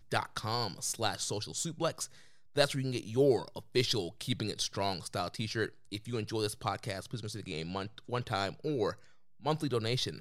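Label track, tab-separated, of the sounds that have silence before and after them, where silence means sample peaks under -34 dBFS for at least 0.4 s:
2.570000	8.910000	sound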